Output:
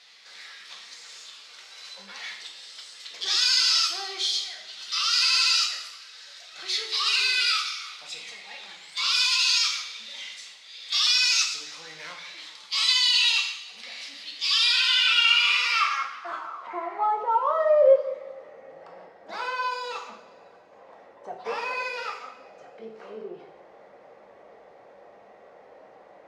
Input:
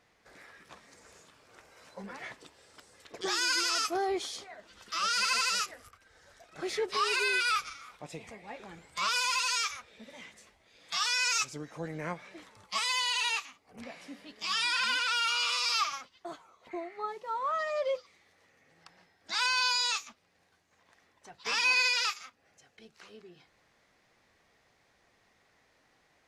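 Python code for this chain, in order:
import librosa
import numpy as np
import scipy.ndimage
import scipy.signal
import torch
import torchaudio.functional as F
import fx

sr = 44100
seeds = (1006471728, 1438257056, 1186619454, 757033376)

y = fx.power_curve(x, sr, exponent=0.7)
y = fx.rev_double_slope(y, sr, seeds[0], early_s=0.71, late_s=2.4, knee_db=-18, drr_db=0.5)
y = fx.filter_sweep_bandpass(y, sr, from_hz=4000.0, to_hz=570.0, start_s=14.66, end_s=17.72, q=2.4)
y = y * 10.0 ** (8.5 / 20.0)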